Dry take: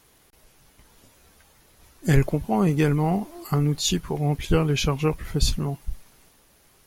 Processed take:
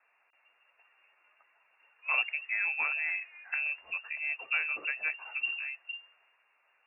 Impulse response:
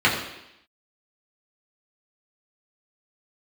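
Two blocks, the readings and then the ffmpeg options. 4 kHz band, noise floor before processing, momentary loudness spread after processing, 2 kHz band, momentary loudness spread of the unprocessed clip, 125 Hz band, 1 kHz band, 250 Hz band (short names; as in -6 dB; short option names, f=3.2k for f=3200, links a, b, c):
under -10 dB, -59 dBFS, 8 LU, +6.0 dB, 8 LU, under -40 dB, -13.0 dB, under -40 dB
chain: -filter_complex "[0:a]lowpass=f=2.4k:t=q:w=0.5098,lowpass=f=2.4k:t=q:w=0.6013,lowpass=f=2.4k:t=q:w=0.9,lowpass=f=2.4k:t=q:w=2.563,afreqshift=-2800,acrossover=split=520 2100:gain=0.0891 1 0.178[a][b][c];[a][b][c]amix=inputs=3:normalize=0,volume=-4.5dB"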